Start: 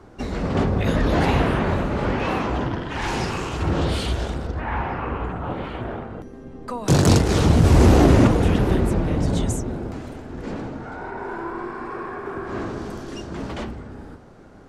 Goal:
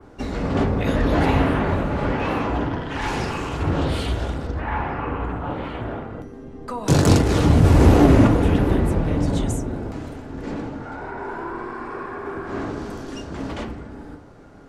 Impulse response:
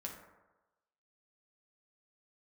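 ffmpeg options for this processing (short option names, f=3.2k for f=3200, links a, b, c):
-filter_complex "[0:a]asplit=2[a][b];[1:a]atrim=start_sample=2205,asetrate=66150,aresample=44100[c];[b][c]afir=irnorm=-1:irlink=0,volume=2.5dB[d];[a][d]amix=inputs=2:normalize=0,adynamicequalizer=threshold=0.0112:dfrequency=5900:dqfactor=0.74:tfrequency=5900:tqfactor=0.74:attack=5:release=100:ratio=0.375:range=2.5:mode=cutabove:tftype=bell,volume=-3.5dB"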